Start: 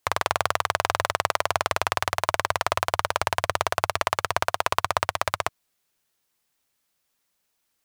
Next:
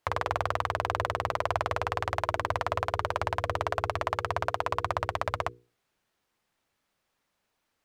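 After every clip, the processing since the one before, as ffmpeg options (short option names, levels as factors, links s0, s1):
-af "lowpass=f=1800:p=1,bandreject=f=60:t=h:w=6,bandreject=f=120:t=h:w=6,bandreject=f=180:t=h:w=6,bandreject=f=240:t=h:w=6,bandreject=f=300:t=h:w=6,bandreject=f=360:t=h:w=6,bandreject=f=420:t=h:w=6,bandreject=f=480:t=h:w=6,alimiter=limit=0.158:level=0:latency=1:release=13,volume=1.68"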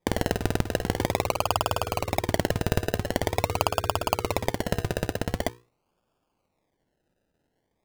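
-af "acrusher=samples=31:mix=1:aa=0.000001:lfo=1:lforange=18.6:lforate=0.45,volume=1.5"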